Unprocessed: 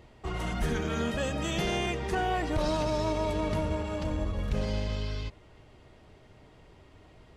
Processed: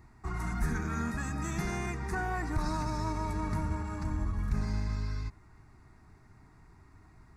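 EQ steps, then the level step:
phaser with its sweep stopped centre 1,300 Hz, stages 4
0.0 dB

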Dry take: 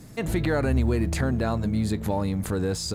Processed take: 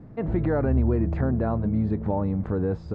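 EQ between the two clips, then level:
low-pass filter 1,100 Hz 12 dB per octave
high-frequency loss of the air 66 metres
+1.0 dB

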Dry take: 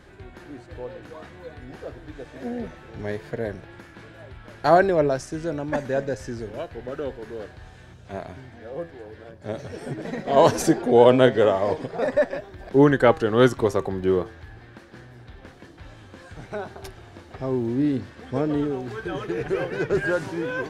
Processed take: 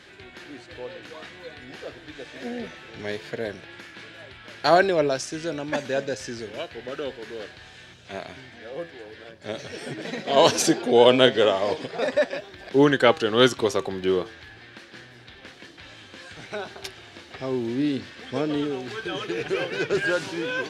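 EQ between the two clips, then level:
dynamic equaliser 1,900 Hz, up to −5 dB, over −46 dBFS, Q 3.2
meter weighting curve D
−1.0 dB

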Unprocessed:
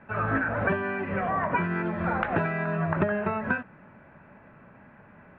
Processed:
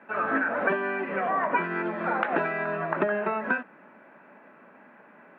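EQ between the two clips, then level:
high-pass filter 240 Hz 24 dB per octave
+1.5 dB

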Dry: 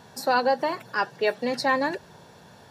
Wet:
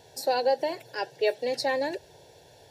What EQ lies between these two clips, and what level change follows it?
phaser with its sweep stopped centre 500 Hz, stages 4
0.0 dB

